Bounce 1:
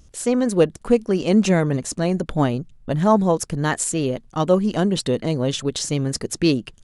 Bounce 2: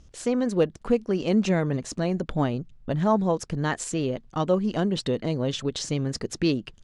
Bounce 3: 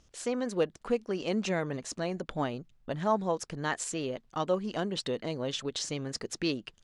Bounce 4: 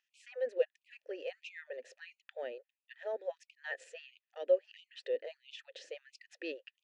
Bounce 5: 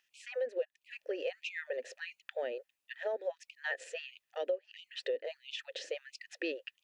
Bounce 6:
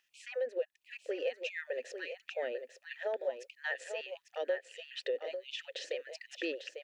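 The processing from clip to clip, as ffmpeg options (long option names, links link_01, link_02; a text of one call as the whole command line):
ffmpeg -i in.wav -filter_complex "[0:a]lowpass=5800,asplit=2[link_01][link_02];[link_02]acompressor=threshold=-25dB:ratio=6,volume=-1dB[link_03];[link_01][link_03]amix=inputs=2:normalize=0,volume=-7.5dB" out.wav
ffmpeg -i in.wav -af "lowshelf=frequency=310:gain=-11,volume=-2.5dB" out.wav
ffmpeg -i in.wav -filter_complex "[0:a]asplit=3[link_01][link_02][link_03];[link_01]bandpass=frequency=530:width_type=q:width=8,volume=0dB[link_04];[link_02]bandpass=frequency=1840:width_type=q:width=8,volume=-6dB[link_05];[link_03]bandpass=frequency=2480:width_type=q:width=8,volume=-9dB[link_06];[link_04][link_05][link_06]amix=inputs=3:normalize=0,afftfilt=real='re*gte(b*sr/1024,250*pow(2200/250,0.5+0.5*sin(2*PI*1.5*pts/sr)))':imag='im*gte(b*sr/1024,250*pow(2200/250,0.5+0.5*sin(2*PI*1.5*pts/sr)))':win_size=1024:overlap=0.75,volume=3.5dB" out.wav
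ffmpeg -i in.wav -af "acompressor=threshold=-40dB:ratio=6,volume=8dB" out.wav
ffmpeg -i in.wav -af "aecho=1:1:847:0.398" out.wav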